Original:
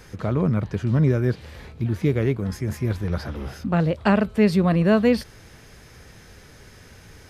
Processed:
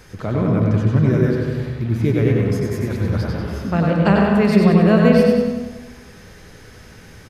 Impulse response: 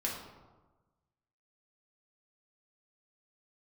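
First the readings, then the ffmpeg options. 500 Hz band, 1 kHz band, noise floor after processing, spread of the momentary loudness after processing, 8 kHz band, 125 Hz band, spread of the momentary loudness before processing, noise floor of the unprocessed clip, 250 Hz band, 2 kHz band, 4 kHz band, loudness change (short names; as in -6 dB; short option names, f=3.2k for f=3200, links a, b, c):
+6.0 dB, +5.0 dB, -43 dBFS, 11 LU, n/a, +5.5 dB, 11 LU, -48 dBFS, +6.0 dB, +4.5 dB, +4.0 dB, +5.5 dB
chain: -filter_complex "[0:a]aecho=1:1:94|188|282|376|470|564:0.562|0.276|0.135|0.0662|0.0324|0.0159,asplit=2[a][b];[1:a]atrim=start_sample=2205,lowpass=4.7k,adelay=104[c];[b][c]afir=irnorm=-1:irlink=0,volume=-5.5dB[d];[a][d]amix=inputs=2:normalize=0,volume=1dB"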